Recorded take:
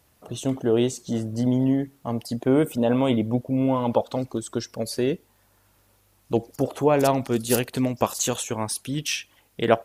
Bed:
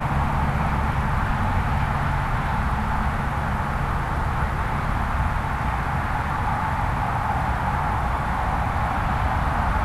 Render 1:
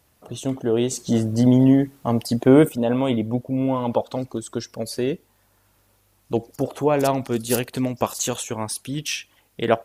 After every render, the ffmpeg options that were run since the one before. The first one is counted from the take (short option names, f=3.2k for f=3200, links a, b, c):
-filter_complex "[0:a]asplit=3[a][b][c];[a]atrim=end=0.912[d];[b]atrim=start=0.908:end=2.692,asetpts=PTS-STARTPTS,volume=6.5dB[e];[c]atrim=start=2.688[f];[d][e]acrossfade=d=0.004:c1=hsin:c2=hsin[g];[g][f]acrossfade=d=0.004:c1=hsin:c2=hsin"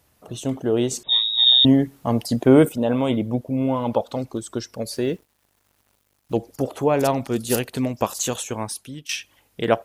-filter_complex "[0:a]asettb=1/sr,asplit=3[a][b][c];[a]atrim=end=1.034[d];[b]atrim=start=1.03:end=1.65,asetpts=PTS-STARTPTS,afade=t=in:d=0.004:c=qsin,afade=t=out:st=0.616:d=0.004:c=qsin,lowpass=f=3.3k:t=q:w=0.5098,lowpass=f=3.3k:t=q:w=0.6013,lowpass=f=3.3k:t=q:w=0.9,lowpass=f=3.3k:t=q:w=2.563,afreqshift=-3900[e];[c]atrim=start=1.646[f];[d][e]acrossfade=d=0.004:c1=hsin:c2=qsin[g];[g][f]acrossfade=d=0.004:c1=qsin:c2=hsin,asettb=1/sr,asplit=3[h][i][j];[h]atrim=end=4.904[k];[i]atrim=start=4.9:end=6.36,asetpts=PTS-STARTPTS,afade=t=in:d=0.004:c=qsin,afade=t=out:st=1.456:d=0.004:c=qsin,acrusher=bits=8:mix=0:aa=0.5[l];[j]atrim=start=6.356[m];[k][l]acrossfade=d=0.004:c1=hsin:c2=qsin[n];[n][m]acrossfade=d=0.004:c1=qsin:c2=hsin,asplit=2[o][p];[o]atrim=end=9.09,asetpts=PTS-STARTPTS,afade=t=out:st=8.59:d=0.5:silence=0.158489[q];[p]atrim=start=9.09,asetpts=PTS-STARTPTS,afade=t=in:d=0.004:c=hsin:silence=0.158489[r];[q][r]concat=n=2:v=0:a=1"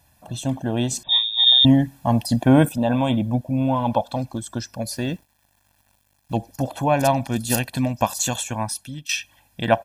-af "aecho=1:1:1.2:0.84"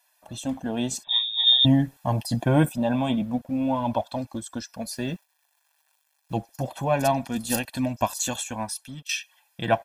-filter_complex "[0:a]flanger=delay=2.9:depth=3.8:regen=-39:speed=0.25:shape=triangular,acrossover=split=680[a][b];[a]aeval=exprs='sgn(val(0))*max(abs(val(0))-0.00237,0)':c=same[c];[c][b]amix=inputs=2:normalize=0"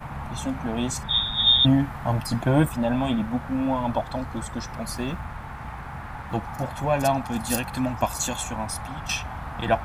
-filter_complex "[1:a]volume=-12dB[a];[0:a][a]amix=inputs=2:normalize=0"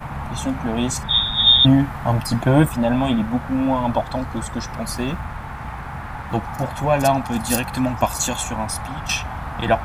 -af "volume=5dB,alimiter=limit=-3dB:level=0:latency=1"